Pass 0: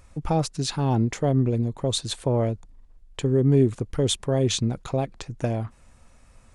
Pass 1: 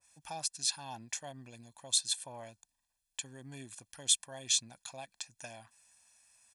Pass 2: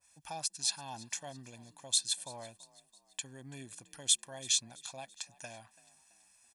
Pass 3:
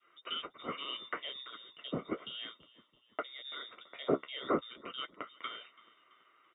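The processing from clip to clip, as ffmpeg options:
-af "aderivative,aecho=1:1:1.2:0.73,adynamicequalizer=threshold=0.00447:dfrequency=1600:dqfactor=0.7:tfrequency=1600:tqfactor=0.7:attack=5:release=100:ratio=0.375:range=1.5:mode=cutabove:tftype=highshelf"
-filter_complex "[0:a]asplit=4[a][b][c][d];[b]adelay=333,afreqshift=39,volume=-21dB[e];[c]adelay=666,afreqshift=78,volume=-27.4dB[f];[d]adelay=999,afreqshift=117,volume=-33.8dB[g];[a][e][f][g]amix=inputs=4:normalize=0"
-filter_complex "[0:a]flanger=delay=6.1:depth=8.1:regen=-40:speed=0.61:shape=sinusoidal,lowpass=f=3.2k:t=q:w=0.5098,lowpass=f=3.2k:t=q:w=0.6013,lowpass=f=3.2k:t=q:w=0.9,lowpass=f=3.2k:t=q:w=2.563,afreqshift=-3800,acrossover=split=160 2000:gain=0.224 1 0.251[a][b][c];[a][b][c]amix=inputs=3:normalize=0,volume=15dB"

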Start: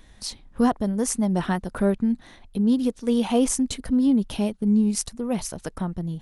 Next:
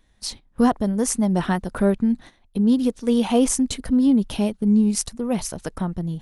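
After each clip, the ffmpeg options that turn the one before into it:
-af "agate=range=-13dB:threshold=-40dB:ratio=16:detection=peak,volume=2.5dB"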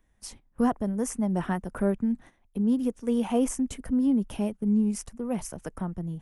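-filter_complex "[0:a]equalizer=f=4.1k:t=o:w=0.64:g=-14,acrossover=split=190|4900[a][b][c];[c]alimiter=limit=-19dB:level=0:latency=1:release=248[d];[a][b][d]amix=inputs=3:normalize=0,volume=-6.5dB"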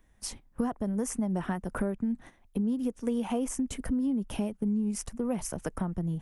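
-af "acompressor=threshold=-31dB:ratio=6,volume=4dB"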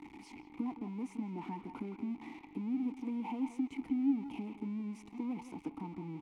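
-filter_complex "[0:a]aeval=exprs='val(0)+0.5*0.0266*sgn(val(0))':c=same,asplit=3[a][b][c];[a]bandpass=f=300:t=q:w=8,volume=0dB[d];[b]bandpass=f=870:t=q:w=8,volume=-6dB[e];[c]bandpass=f=2.24k:t=q:w=8,volume=-9dB[f];[d][e][f]amix=inputs=3:normalize=0,asplit=2[g][h];[h]adelay=170,highpass=300,lowpass=3.4k,asoftclip=type=hard:threshold=-33dB,volume=-10dB[i];[g][i]amix=inputs=2:normalize=0,volume=1.5dB"

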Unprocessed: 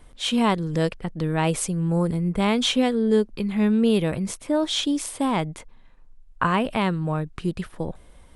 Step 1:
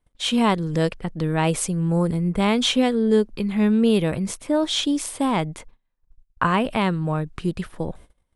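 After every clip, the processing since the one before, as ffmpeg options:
-af "agate=range=-26dB:threshold=-43dB:ratio=16:detection=peak,volume=1.5dB"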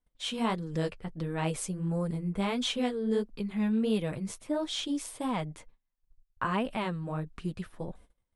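-af "flanger=delay=3.9:depth=6.9:regen=-22:speed=1.5:shape=sinusoidal,volume=-7dB"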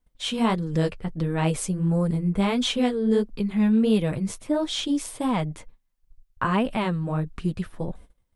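-af "lowshelf=f=270:g=4.5,volume=5.5dB"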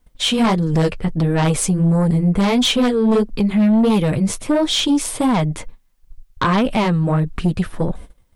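-filter_complex "[0:a]asplit=2[a][b];[b]acompressor=threshold=-30dB:ratio=6,volume=-0.5dB[c];[a][c]amix=inputs=2:normalize=0,aeval=exprs='0.422*sin(PI/2*2.24*val(0)/0.422)':c=same,volume=-3.5dB"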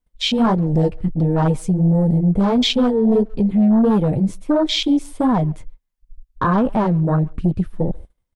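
-filter_complex "[0:a]afwtdn=0.1,asplit=2[a][b];[b]adelay=140,highpass=300,lowpass=3.4k,asoftclip=type=hard:threshold=-16.5dB,volume=-26dB[c];[a][c]amix=inputs=2:normalize=0"

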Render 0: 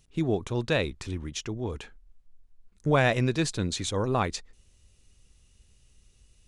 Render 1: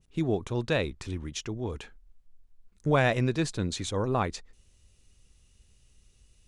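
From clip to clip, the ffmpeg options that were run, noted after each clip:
-af "adynamicequalizer=threshold=0.00891:dfrequency=2000:dqfactor=0.7:tfrequency=2000:tqfactor=0.7:attack=5:release=100:ratio=0.375:range=2.5:mode=cutabove:tftype=highshelf,volume=-1dB"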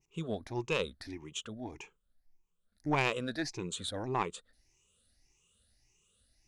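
-af "afftfilt=real='re*pow(10,17/40*sin(2*PI*(0.73*log(max(b,1)*sr/1024/100)/log(2)-(1.7)*(pts-256)/sr)))':imag='im*pow(10,17/40*sin(2*PI*(0.73*log(max(b,1)*sr/1024/100)/log(2)-(1.7)*(pts-256)/sr)))':win_size=1024:overlap=0.75,lowshelf=f=180:g=-11.5,aeval=exprs='0.335*(cos(1*acos(clip(val(0)/0.335,-1,1)))-cos(1*PI/2))+0.133*(cos(2*acos(clip(val(0)/0.335,-1,1)))-cos(2*PI/2))+0.00841*(cos(8*acos(clip(val(0)/0.335,-1,1)))-cos(8*PI/2))':c=same,volume=-7dB"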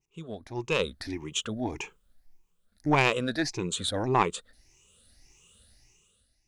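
-af "dynaudnorm=f=160:g=9:m=16dB,volume=-4dB"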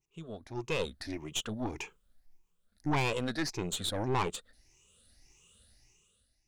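-af "aeval=exprs='(tanh(15.8*val(0)+0.65)-tanh(0.65))/15.8':c=same"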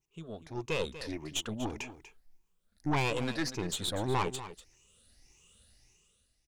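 -af "aecho=1:1:242:0.211"

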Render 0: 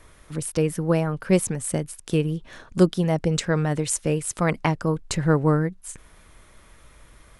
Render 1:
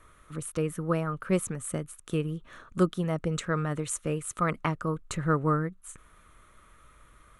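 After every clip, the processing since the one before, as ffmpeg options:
-af "equalizer=f=800:t=o:w=0.33:g=-5,equalizer=f=1.25k:t=o:w=0.33:g=12,equalizer=f=5k:t=o:w=0.33:g=-11,volume=-7dB"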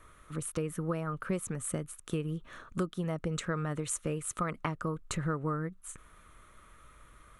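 -af "acompressor=threshold=-29dB:ratio=6"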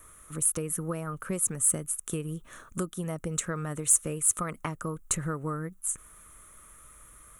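-af "aexciter=amount=3.2:drive=9.1:freq=6.4k"

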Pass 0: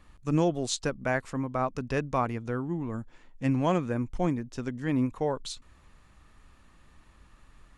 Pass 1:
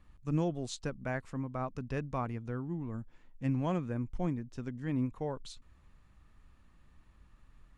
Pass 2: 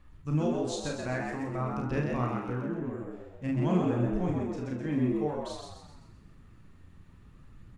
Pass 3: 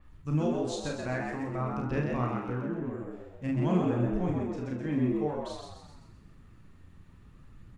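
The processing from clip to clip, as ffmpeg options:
-af "bass=f=250:g=6,treble=f=4k:g=-3,volume=-9dB"
-filter_complex "[0:a]asplit=2[a][b];[b]aecho=0:1:33|48|72:0.631|0.473|0.335[c];[a][c]amix=inputs=2:normalize=0,aphaser=in_gain=1:out_gain=1:delay=3.8:decay=0.28:speed=0.51:type=sinusoidal,asplit=2[d][e];[e]asplit=6[f][g][h][i][j][k];[f]adelay=129,afreqshift=85,volume=-4dB[l];[g]adelay=258,afreqshift=170,volume=-10.6dB[m];[h]adelay=387,afreqshift=255,volume=-17.1dB[n];[i]adelay=516,afreqshift=340,volume=-23.7dB[o];[j]adelay=645,afreqshift=425,volume=-30.2dB[p];[k]adelay=774,afreqshift=510,volume=-36.8dB[q];[l][m][n][o][p][q]amix=inputs=6:normalize=0[r];[d][r]amix=inputs=2:normalize=0"
-af "adynamicequalizer=threshold=0.002:dfrequency=4500:dqfactor=0.7:tfrequency=4500:tqfactor=0.7:attack=5:release=100:ratio=0.375:range=2:mode=cutabove:tftype=highshelf"

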